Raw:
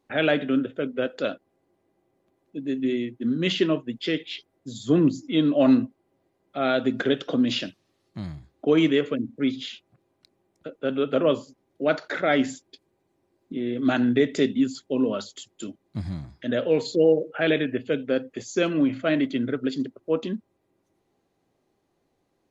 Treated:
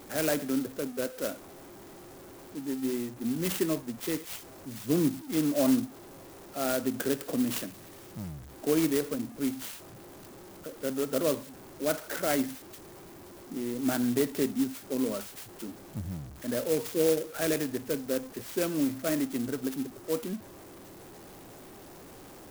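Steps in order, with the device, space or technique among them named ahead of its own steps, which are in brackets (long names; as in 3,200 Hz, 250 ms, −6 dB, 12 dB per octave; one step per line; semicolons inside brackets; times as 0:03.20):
early CD player with a faulty converter (converter with a step at zero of −35.5 dBFS; converter with an unsteady clock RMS 0.088 ms)
level −7 dB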